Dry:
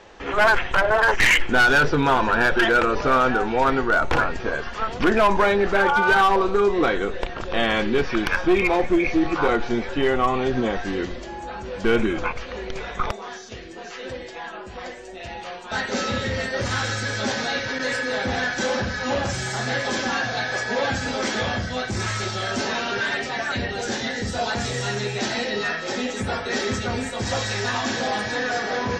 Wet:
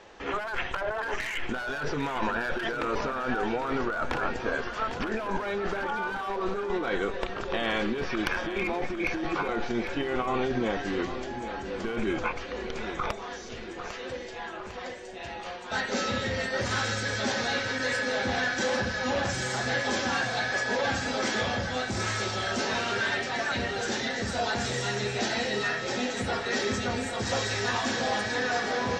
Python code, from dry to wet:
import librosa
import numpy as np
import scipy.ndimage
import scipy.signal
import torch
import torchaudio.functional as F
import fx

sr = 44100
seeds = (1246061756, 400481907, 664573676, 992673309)

y = fx.low_shelf(x, sr, hz=110.0, db=-5.0)
y = fx.over_compress(y, sr, threshold_db=-23.0, ratio=-1.0)
y = fx.echo_feedback(y, sr, ms=801, feedback_pct=51, wet_db=-10.5)
y = y * 10.0 ** (-5.5 / 20.0)